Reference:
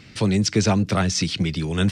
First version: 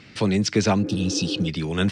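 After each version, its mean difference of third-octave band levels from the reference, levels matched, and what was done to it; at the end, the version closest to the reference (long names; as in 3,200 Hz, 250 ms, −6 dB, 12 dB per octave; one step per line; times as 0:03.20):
3.0 dB: low-shelf EQ 110 Hz −11 dB
healed spectral selection 0:00.86–0:01.46, 270–2,500 Hz before
high-shelf EQ 7,200 Hz −11.5 dB
level +1.5 dB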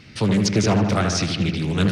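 4.0 dB: notch filter 7,400 Hz, Q 7.8
on a send: delay with a low-pass on its return 78 ms, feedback 65%, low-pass 2,600 Hz, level −5 dB
on the sum: highs frequency-modulated by the lows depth 0.3 ms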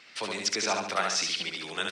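10.0 dB: high-pass filter 720 Hz 12 dB per octave
high-shelf EQ 7,900 Hz −7 dB
repeating echo 70 ms, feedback 43%, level −3.5 dB
level −2.5 dB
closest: first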